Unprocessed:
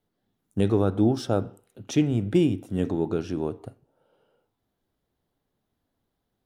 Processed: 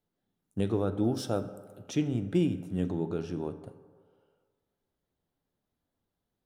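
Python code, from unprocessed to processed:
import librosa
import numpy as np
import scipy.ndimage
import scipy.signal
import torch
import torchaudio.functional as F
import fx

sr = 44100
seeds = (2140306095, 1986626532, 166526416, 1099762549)

y = fx.high_shelf(x, sr, hz=6900.0, db=11.0, at=(1.04, 1.82))
y = fx.rev_fdn(y, sr, rt60_s=1.7, lf_ratio=0.8, hf_ratio=0.45, size_ms=34.0, drr_db=10.5)
y = F.gain(torch.from_numpy(y), -6.5).numpy()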